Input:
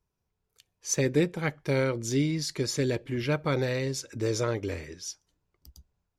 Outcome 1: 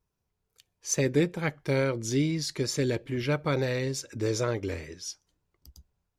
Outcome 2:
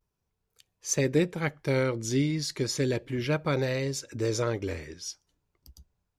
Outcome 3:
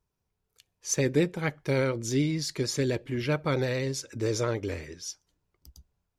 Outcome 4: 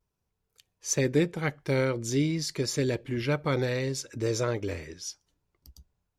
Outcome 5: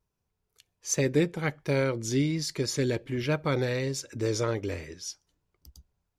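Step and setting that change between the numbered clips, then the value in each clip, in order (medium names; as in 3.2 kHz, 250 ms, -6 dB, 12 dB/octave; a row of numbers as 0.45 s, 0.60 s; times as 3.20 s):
vibrato, rate: 2.3 Hz, 0.34 Hz, 11 Hz, 0.51 Hz, 1.3 Hz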